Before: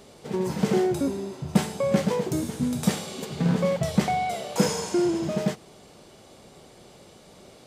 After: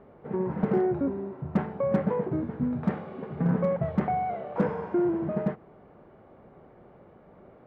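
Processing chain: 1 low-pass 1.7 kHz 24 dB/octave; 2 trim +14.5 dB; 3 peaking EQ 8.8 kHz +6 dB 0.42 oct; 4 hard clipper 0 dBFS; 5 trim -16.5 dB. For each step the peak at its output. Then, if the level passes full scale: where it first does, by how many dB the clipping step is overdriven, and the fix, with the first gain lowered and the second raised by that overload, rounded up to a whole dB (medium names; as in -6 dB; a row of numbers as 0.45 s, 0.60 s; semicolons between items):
-6.5 dBFS, +8.0 dBFS, +8.0 dBFS, 0.0 dBFS, -16.5 dBFS; step 2, 8.0 dB; step 2 +6.5 dB, step 5 -8.5 dB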